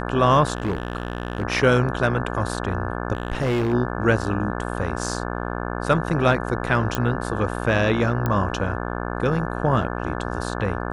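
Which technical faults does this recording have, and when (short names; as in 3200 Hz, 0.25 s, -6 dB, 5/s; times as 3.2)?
buzz 60 Hz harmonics 29 -28 dBFS
0.55–1.43 clipped -19.5 dBFS
3.13–3.74 clipped -18.5 dBFS
6.95 pop -8 dBFS
8.26 pop -11 dBFS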